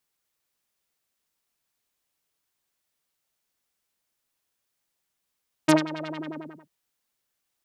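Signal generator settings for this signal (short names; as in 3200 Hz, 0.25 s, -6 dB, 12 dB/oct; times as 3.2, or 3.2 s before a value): synth patch with filter wobble D#4, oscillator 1 saw, sub -13.5 dB, filter lowpass, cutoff 450 Hz, Q 2.2, filter envelope 3 oct, filter decay 0.13 s, filter sustain 50%, attack 13 ms, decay 0.14 s, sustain -17 dB, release 0.62 s, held 0.38 s, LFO 11 Hz, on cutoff 1.8 oct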